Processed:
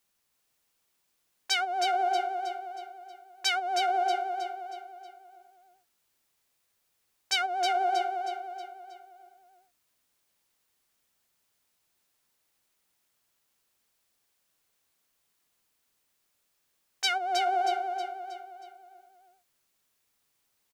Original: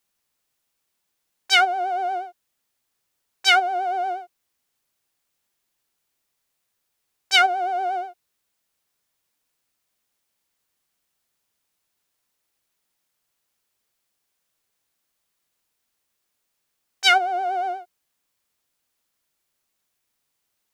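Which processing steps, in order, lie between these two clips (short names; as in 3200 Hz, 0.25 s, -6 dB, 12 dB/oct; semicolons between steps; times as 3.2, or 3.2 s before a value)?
compressor 12:1, threshold -24 dBFS, peak gain reduction 14 dB; feedback echo 0.317 s, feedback 45%, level -6 dB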